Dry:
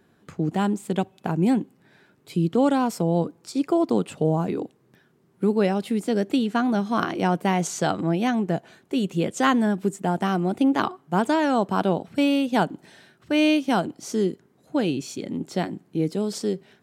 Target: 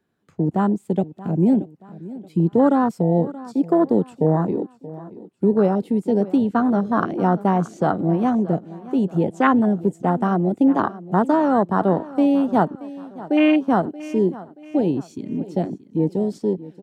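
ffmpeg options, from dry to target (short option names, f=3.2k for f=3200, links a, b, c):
-filter_complex "[0:a]afwtdn=0.0631,acrossover=split=310|3600[a][b][c];[c]alimiter=level_in=18dB:limit=-24dB:level=0:latency=1:release=392,volume=-18dB[d];[a][b][d]amix=inputs=3:normalize=0,aecho=1:1:628|1256|1884:0.133|0.0533|0.0213,volume=4dB"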